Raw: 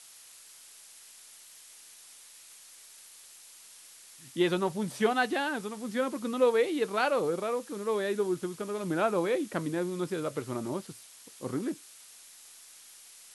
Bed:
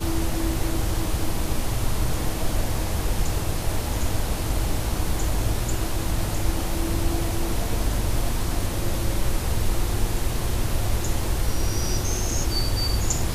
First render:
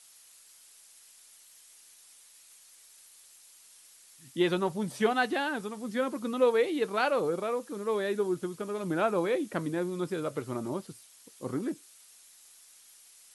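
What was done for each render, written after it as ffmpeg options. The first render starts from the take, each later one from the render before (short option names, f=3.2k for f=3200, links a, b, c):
-af "afftdn=nr=6:nf=-53"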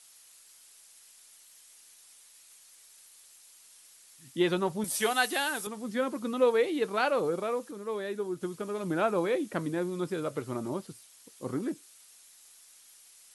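-filter_complex "[0:a]asettb=1/sr,asplit=3[a][b][c];[a]atrim=end=4.844[d];[b]atrim=start=4.84:end=5.67,asetpts=PTS-STARTPTS,afade=t=in:d=0.004:c=qsin,afade=t=out:st=0.826:d=0.004:c=qsin,aemphasis=mode=production:type=riaa[e];[c]atrim=start=5.666[f];[d][e]acrossfade=d=0.004:c1=hsin:c2=qsin[g];[g][f]acrossfade=d=0.004:c1=qsin:c2=hsin,asplit=3[h][i][j];[h]atrim=end=7.712[k];[i]atrim=start=7.708:end=8.412,asetpts=PTS-STARTPTS,volume=-4.5dB[l];[j]atrim=start=8.408[m];[k][l]acrossfade=d=0.004:c1=hsin:c2=hsin[n];[n][m]acrossfade=d=0.004:c1=hsin:c2=hsin"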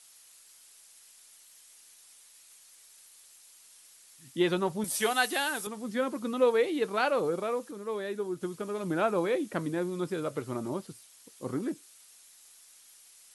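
-af anull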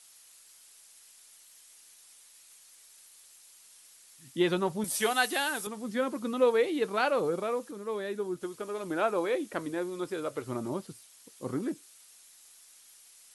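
-filter_complex "[0:a]asettb=1/sr,asplit=3[a][b][c];[a]atrim=end=8.364[d];[b]atrim=start=8.36:end=10.46,asetpts=PTS-STARTPTS,afade=t=in:d=0.004:c=qsin,afade=t=out:st=2.096:d=0.004:c=qsin,equalizer=f=170:w=1.5:g=-10[e];[c]atrim=start=10.456[f];[d][e]acrossfade=d=0.004:c1=hsin:c2=qsin[g];[g][f]acrossfade=d=0.004:c1=qsin:c2=hsin"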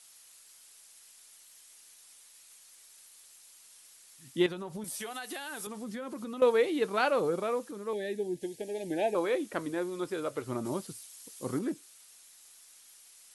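-filter_complex "[0:a]asettb=1/sr,asplit=3[a][b][c];[a]atrim=end=4.464[d];[b]atrim=start=4.46:end=6.42,asetpts=PTS-STARTPTS,afade=t=in:d=0.004:c=qsin,afade=t=out:st=1.956:d=0.004:c=qsin,acompressor=threshold=-35dB:ratio=12:attack=3.2:release=140:knee=1:detection=peak[e];[c]atrim=start=6.416[f];[d][e]acrossfade=d=0.004:c1=hsin:c2=qsin[g];[g][f]acrossfade=d=0.004:c1=qsin:c2=hsin,asettb=1/sr,asplit=3[h][i][j];[h]atrim=end=7.934[k];[i]atrim=start=7.93:end=9.15,asetpts=PTS-STARTPTS,afade=t=in:d=0.004:c=qsin,afade=t=out:st=1.216:d=0.004:c=qsin,asuperstop=centerf=1200:order=12:qfactor=1.6[l];[j]atrim=start=9.146[m];[k][l]acrossfade=d=0.004:c1=hsin:c2=qsin[n];[n][m]acrossfade=d=0.004:c1=qsin:c2=hsin,asettb=1/sr,asplit=3[o][p][q];[o]atrim=end=10.654[r];[p]atrim=start=10.65:end=11.59,asetpts=PTS-STARTPTS,afade=t=in:d=0.004:c=qsin,afade=t=out:st=0.936:d=0.004:c=qsin,highshelf=f=4k:g=7.5[s];[q]atrim=start=11.586[t];[r][s]acrossfade=d=0.004:c1=hsin:c2=qsin[u];[u][t]acrossfade=d=0.004:c1=qsin:c2=hsin"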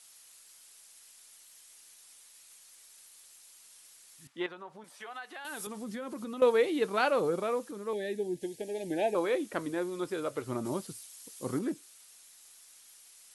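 -filter_complex "[0:a]asettb=1/sr,asplit=3[a][b][c];[a]atrim=end=4.274[d];[b]atrim=start=4.27:end=5.45,asetpts=PTS-STARTPTS,afade=t=in:d=0.004:c=qsin,afade=t=out:st=1.176:d=0.004:c=qsin,bandpass=f=1.2k:t=q:w=0.9[e];[c]atrim=start=5.446[f];[d][e]acrossfade=d=0.004:c1=hsin:c2=qsin[g];[g][f]acrossfade=d=0.004:c1=qsin:c2=hsin"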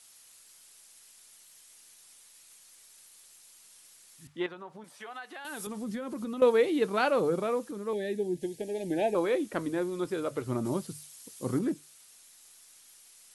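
-af "lowshelf=f=250:g=8,bandreject=f=50:t=h:w=6,bandreject=f=100:t=h:w=6,bandreject=f=150:t=h:w=6"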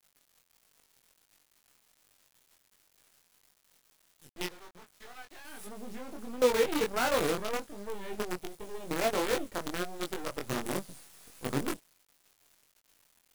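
-af "acrusher=bits=5:dc=4:mix=0:aa=0.000001,flanger=delay=20:depth=3.5:speed=1.4"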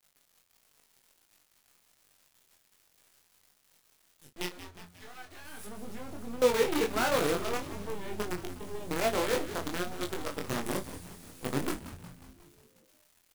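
-filter_complex "[0:a]asplit=2[a][b];[b]adelay=34,volume=-11dB[c];[a][c]amix=inputs=2:normalize=0,asplit=8[d][e][f][g][h][i][j][k];[e]adelay=180,afreqshift=-87,volume=-12.5dB[l];[f]adelay=360,afreqshift=-174,volume=-17.1dB[m];[g]adelay=540,afreqshift=-261,volume=-21.7dB[n];[h]adelay=720,afreqshift=-348,volume=-26.2dB[o];[i]adelay=900,afreqshift=-435,volume=-30.8dB[p];[j]adelay=1080,afreqshift=-522,volume=-35.4dB[q];[k]adelay=1260,afreqshift=-609,volume=-40dB[r];[d][l][m][n][o][p][q][r]amix=inputs=8:normalize=0"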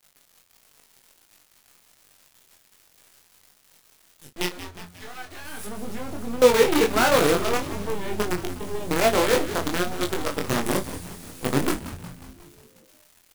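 -af "volume=9dB"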